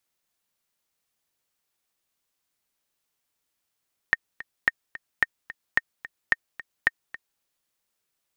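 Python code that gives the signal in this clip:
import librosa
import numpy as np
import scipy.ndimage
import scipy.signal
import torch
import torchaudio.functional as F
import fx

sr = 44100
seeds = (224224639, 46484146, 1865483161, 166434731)

y = fx.click_track(sr, bpm=219, beats=2, bars=6, hz=1840.0, accent_db=17.5, level_db=-5.5)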